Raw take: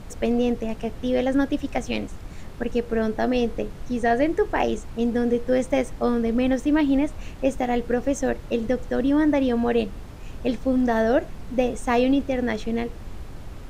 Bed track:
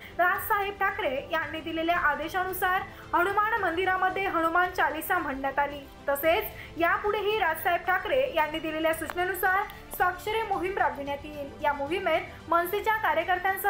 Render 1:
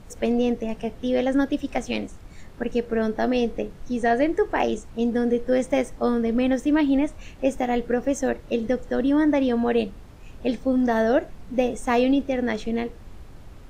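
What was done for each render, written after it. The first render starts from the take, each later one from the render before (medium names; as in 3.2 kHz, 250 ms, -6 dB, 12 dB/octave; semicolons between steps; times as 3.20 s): noise print and reduce 6 dB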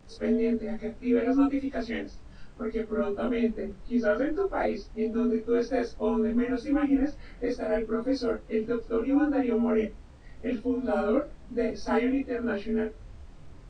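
frequency axis rescaled in octaves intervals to 88%; chorus voices 6, 0.56 Hz, delay 29 ms, depth 3.9 ms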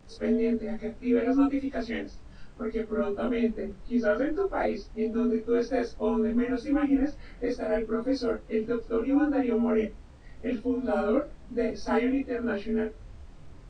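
no audible change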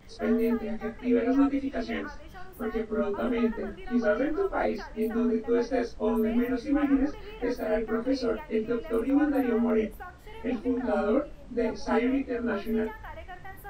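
add bed track -18 dB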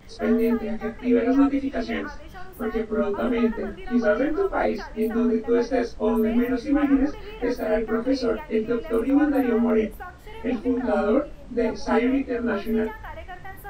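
trim +4.5 dB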